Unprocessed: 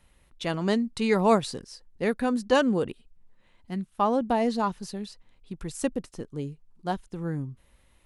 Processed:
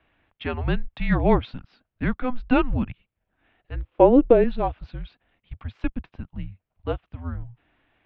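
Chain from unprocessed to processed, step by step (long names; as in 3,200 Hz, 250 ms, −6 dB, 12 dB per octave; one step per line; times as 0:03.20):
single-sideband voice off tune −250 Hz 160–3,400 Hz
0:03.75–0:04.44: hollow resonant body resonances 330/490 Hz, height 14 dB, ringing for 35 ms
level +2.5 dB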